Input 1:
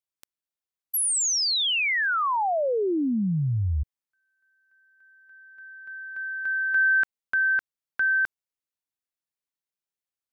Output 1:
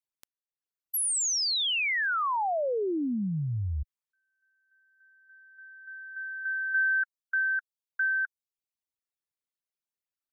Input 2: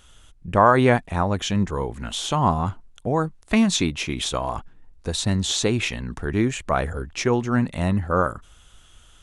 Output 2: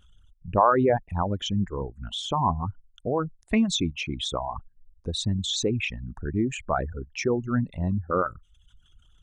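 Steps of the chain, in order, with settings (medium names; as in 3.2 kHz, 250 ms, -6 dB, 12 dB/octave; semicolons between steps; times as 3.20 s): resonances exaggerated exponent 2; reverb removal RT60 0.55 s; trim -3.5 dB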